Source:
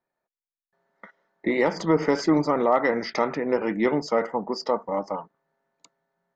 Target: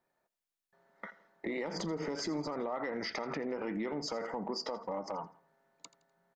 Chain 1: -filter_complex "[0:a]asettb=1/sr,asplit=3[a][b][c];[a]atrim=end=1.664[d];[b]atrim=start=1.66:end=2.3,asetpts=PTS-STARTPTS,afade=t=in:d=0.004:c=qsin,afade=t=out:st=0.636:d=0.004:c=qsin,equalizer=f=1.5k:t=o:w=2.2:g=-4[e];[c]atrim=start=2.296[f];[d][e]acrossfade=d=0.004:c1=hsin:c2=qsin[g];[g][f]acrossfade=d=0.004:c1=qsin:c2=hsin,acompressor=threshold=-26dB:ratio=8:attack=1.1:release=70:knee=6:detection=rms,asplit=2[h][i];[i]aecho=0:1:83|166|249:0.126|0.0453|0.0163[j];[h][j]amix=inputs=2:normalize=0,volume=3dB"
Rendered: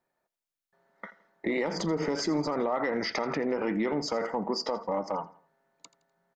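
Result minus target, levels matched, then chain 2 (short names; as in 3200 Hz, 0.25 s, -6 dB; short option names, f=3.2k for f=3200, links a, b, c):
compressor: peak gain reduction -8 dB
-filter_complex "[0:a]asettb=1/sr,asplit=3[a][b][c];[a]atrim=end=1.664[d];[b]atrim=start=1.66:end=2.3,asetpts=PTS-STARTPTS,afade=t=in:d=0.004:c=qsin,afade=t=out:st=0.636:d=0.004:c=qsin,equalizer=f=1.5k:t=o:w=2.2:g=-4[e];[c]atrim=start=2.296[f];[d][e]acrossfade=d=0.004:c1=hsin:c2=qsin[g];[g][f]acrossfade=d=0.004:c1=qsin:c2=hsin,acompressor=threshold=-35dB:ratio=8:attack=1.1:release=70:knee=6:detection=rms,asplit=2[h][i];[i]aecho=0:1:83|166|249:0.126|0.0453|0.0163[j];[h][j]amix=inputs=2:normalize=0,volume=3dB"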